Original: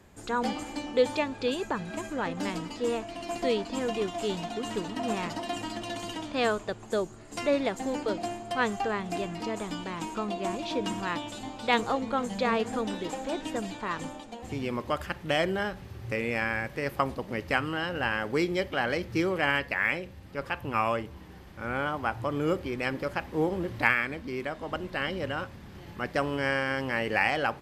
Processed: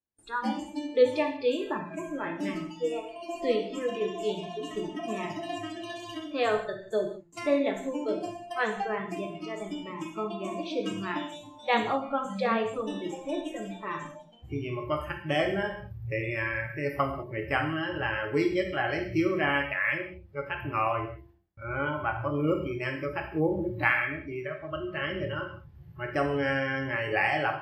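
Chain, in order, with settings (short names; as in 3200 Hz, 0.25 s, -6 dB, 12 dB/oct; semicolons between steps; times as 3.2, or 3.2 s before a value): spectral noise reduction 21 dB; de-hum 171.4 Hz, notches 6; gate with hold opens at -48 dBFS; high shelf 3100 Hz -8 dB; non-linear reverb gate 0.22 s falling, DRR 2.5 dB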